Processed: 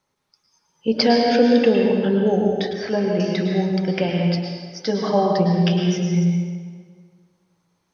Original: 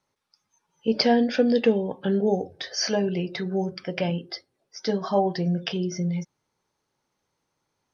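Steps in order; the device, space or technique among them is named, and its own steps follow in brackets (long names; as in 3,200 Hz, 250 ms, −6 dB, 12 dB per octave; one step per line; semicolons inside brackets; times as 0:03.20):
stairwell (convolution reverb RT60 1.7 s, pre-delay 99 ms, DRR 1 dB)
0:02.73–0:03.20: high-frequency loss of the air 360 metres
level +3 dB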